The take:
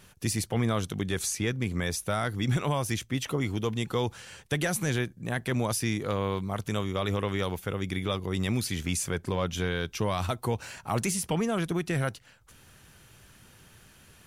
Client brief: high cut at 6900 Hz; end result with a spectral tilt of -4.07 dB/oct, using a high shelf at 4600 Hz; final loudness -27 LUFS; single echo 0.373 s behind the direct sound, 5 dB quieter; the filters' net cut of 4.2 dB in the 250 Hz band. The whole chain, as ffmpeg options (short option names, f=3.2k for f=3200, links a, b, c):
-af "lowpass=6.9k,equalizer=f=250:t=o:g=-6,highshelf=f=4.6k:g=6.5,aecho=1:1:373:0.562,volume=3dB"